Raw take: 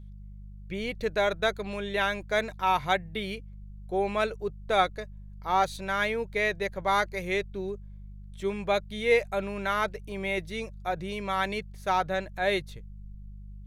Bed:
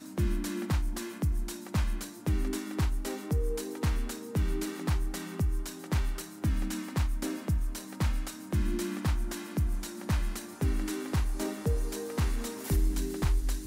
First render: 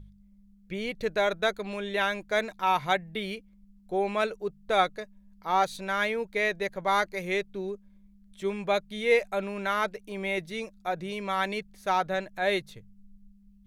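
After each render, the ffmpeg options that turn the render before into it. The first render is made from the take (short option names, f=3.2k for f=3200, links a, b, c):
-af "bandreject=f=50:t=h:w=4,bandreject=f=100:t=h:w=4,bandreject=f=150:t=h:w=4"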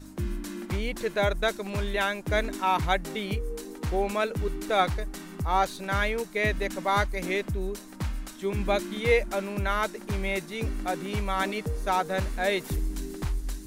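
-filter_complex "[1:a]volume=-2.5dB[a];[0:a][a]amix=inputs=2:normalize=0"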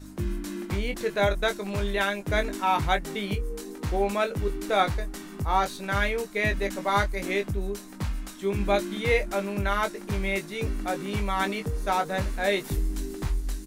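-filter_complex "[0:a]asplit=2[a][b];[b]adelay=20,volume=-7dB[c];[a][c]amix=inputs=2:normalize=0"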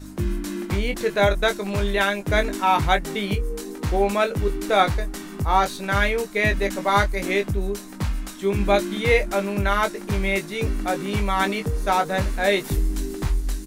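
-af "volume=5dB"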